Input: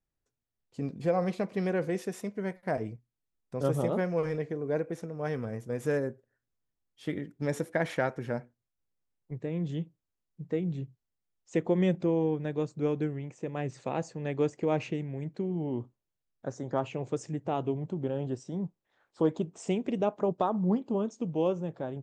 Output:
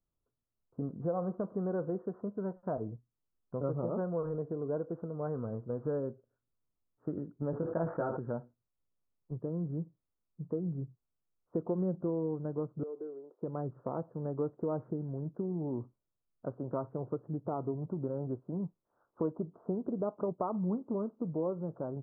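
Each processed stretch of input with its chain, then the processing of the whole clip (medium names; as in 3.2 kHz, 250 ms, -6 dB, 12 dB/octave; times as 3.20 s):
7.51–8.19 s: doubling 18 ms -3 dB + decay stretcher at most 61 dB/s
12.83–13.42 s: ladder high-pass 360 Hz, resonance 60% + compression, threshold -36 dBFS
whole clip: steep low-pass 1.4 kHz 72 dB/octave; band-stop 800 Hz, Q 12; compression 2:1, threshold -34 dBFS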